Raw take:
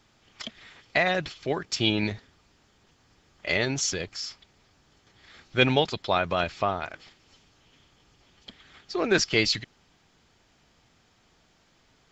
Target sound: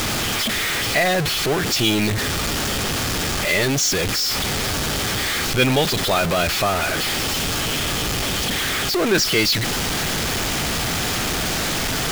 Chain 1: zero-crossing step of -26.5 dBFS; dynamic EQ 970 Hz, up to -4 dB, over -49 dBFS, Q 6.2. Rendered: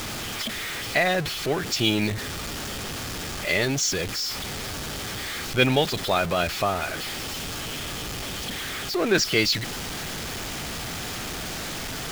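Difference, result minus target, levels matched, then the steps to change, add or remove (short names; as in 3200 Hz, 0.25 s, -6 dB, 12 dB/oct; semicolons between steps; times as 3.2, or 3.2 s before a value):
zero-crossing step: distortion -6 dB
change: zero-crossing step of -16.5 dBFS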